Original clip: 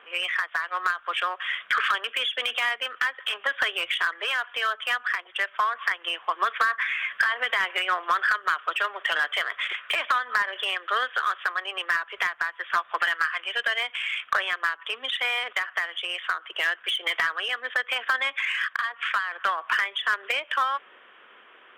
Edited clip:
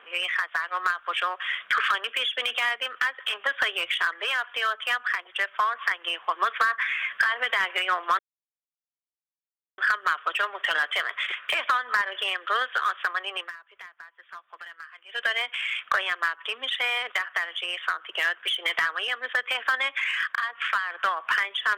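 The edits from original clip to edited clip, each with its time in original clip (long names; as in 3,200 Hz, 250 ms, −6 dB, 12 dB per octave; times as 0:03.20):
0:08.19: splice in silence 1.59 s
0:11.77–0:13.65: duck −18 dB, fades 0.16 s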